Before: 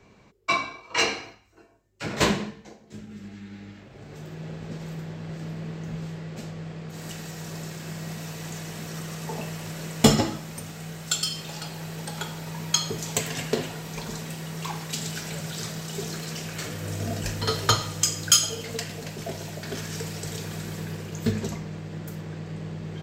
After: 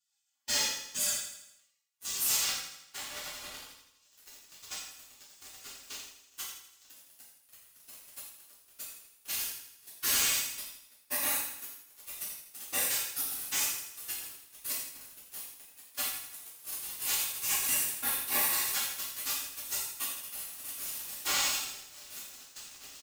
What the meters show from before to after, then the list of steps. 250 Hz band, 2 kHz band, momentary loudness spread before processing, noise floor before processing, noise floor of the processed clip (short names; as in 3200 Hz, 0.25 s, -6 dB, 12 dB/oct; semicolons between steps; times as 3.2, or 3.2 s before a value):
-24.0 dB, -5.5 dB, 14 LU, -54 dBFS, -66 dBFS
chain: steep high-pass 200 Hz 48 dB/oct; notch 2600 Hz, Q 11; spectral gate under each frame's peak -30 dB weak; comb 3.6 ms, depth 78%; sample leveller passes 5; soft clip -33.5 dBFS, distortion -6 dB; feedback echo 81 ms, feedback 53%, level -9.5 dB; non-linear reverb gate 0.19 s falling, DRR -7 dB